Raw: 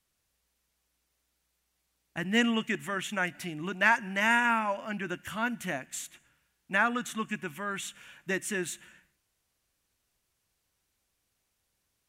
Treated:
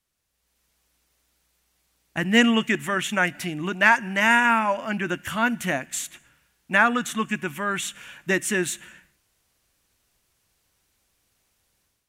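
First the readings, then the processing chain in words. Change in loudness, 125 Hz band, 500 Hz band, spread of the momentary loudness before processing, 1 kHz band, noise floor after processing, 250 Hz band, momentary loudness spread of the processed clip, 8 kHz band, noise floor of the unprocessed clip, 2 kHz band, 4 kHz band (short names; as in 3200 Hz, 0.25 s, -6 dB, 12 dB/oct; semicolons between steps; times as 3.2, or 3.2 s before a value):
+7.5 dB, +8.0 dB, +8.0 dB, 14 LU, +7.0 dB, -73 dBFS, +8.0 dB, 12 LU, +8.5 dB, -79 dBFS, +7.5 dB, +8.0 dB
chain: AGC gain up to 9.5 dB; gain -1 dB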